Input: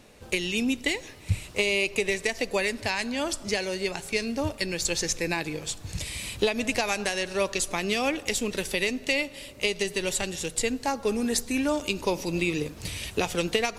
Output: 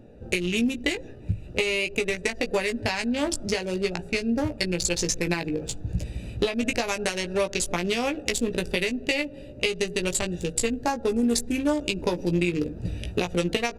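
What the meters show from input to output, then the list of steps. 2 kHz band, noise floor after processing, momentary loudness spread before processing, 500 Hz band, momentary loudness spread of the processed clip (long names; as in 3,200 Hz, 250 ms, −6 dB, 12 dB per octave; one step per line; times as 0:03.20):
−0.5 dB, −42 dBFS, 6 LU, +1.5 dB, 6 LU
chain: adaptive Wiener filter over 41 samples
downward compressor, threshold −29 dBFS, peak gain reduction 9.5 dB
double-tracking delay 17 ms −6 dB
level +7 dB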